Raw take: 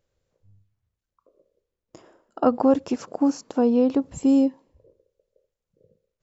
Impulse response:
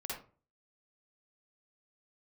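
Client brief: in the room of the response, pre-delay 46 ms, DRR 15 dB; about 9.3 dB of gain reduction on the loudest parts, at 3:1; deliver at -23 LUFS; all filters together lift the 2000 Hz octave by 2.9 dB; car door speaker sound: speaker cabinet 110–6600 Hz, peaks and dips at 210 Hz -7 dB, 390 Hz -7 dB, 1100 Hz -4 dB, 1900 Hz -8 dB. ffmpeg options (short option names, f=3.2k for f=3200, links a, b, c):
-filter_complex "[0:a]equalizer=f=2k:t=o:g=8.5,acompressor=threshold=-25dB:ratio=3,asplit=2[a][b];[1:a]atrim=start_sample=2205,adelay=46[c];[b][c]afir=irnorm=-1:irlink=0,volume=-15.5dB[d];[a][d]amix=inputs=2:normalize=0,highpass=110,equalizer=f=210:t=q:w=4:g=-7,equalizer=f=390:t=q:w=4:g=-7,equalizer=f=1.1k:t=q:w=4:g=-4,equalizer=f=1.9k:t=q:w=4:g=-8,lowpass=f=6.6k:w=0.5412,lowpass=f=6.6k:w=1.3066,volume=8dB"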